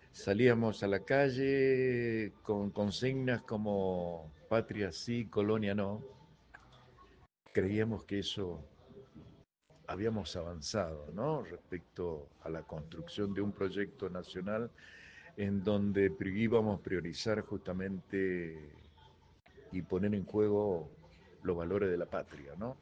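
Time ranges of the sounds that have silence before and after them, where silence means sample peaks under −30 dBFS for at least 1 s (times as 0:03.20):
0:07.57–0:08.51
0:09.89–0:18.46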